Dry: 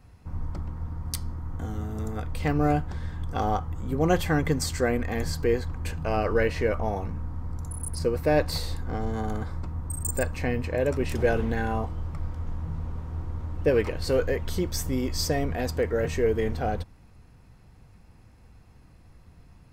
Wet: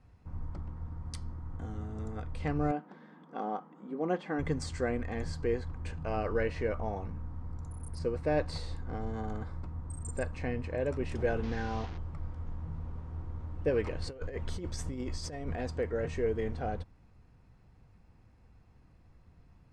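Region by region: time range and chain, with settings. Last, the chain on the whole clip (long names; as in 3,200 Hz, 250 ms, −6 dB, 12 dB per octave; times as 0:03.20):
0:02.71–0:04.39: linear-phase brick-wall high-pass 170 Hz + head-to-tape spacing loss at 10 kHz 20 dB
0:11.43–0:11.98: linear delta modulator 32 kbit/s, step −30.5 dBFS + notch filter 620 Hz, Q 7.7
0:13.83–0:15.56: high-shelf EQ 11,000 Hz +4.5 dB + compressor whose output falls as the input rises −28 dBFS, ratio −0.5
whole clip: Butterworth low-pass 9,600 Hz 36 dB per octave; high-shelf EQ 4,000 Hz −8 dB; level −7 dB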